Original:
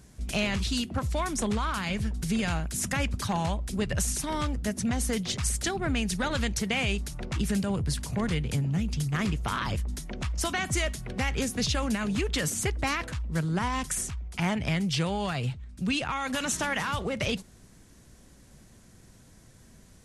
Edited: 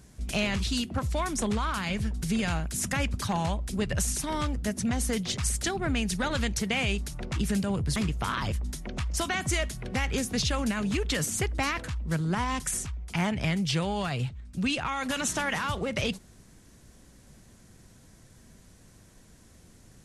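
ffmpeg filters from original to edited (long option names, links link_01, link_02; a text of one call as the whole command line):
ffmpeg -i in.wav -filter_complex "[0:a]asplit=2[link_01][link_02];[link_01]atrim=end=7.962[link_03];[link_02]atrim=start=9.198[link_04];[link_03][link_04]acrossfade=duration=0.004:curve1=hsin:curve2=hsin" out.wav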